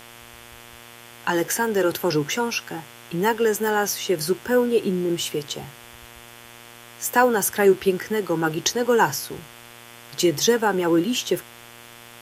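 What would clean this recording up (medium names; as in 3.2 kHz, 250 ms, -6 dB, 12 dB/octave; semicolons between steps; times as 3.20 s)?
de-click; de-hum 118.3 Hz, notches 30; noise print and reduce 22 dB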